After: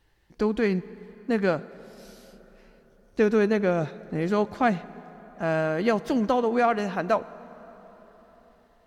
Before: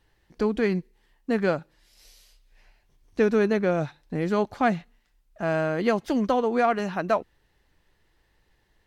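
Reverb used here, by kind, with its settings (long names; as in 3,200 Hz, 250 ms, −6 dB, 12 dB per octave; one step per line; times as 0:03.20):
dense smooth reverb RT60 4.5 s, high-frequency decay 0.6×, DRR 17 dB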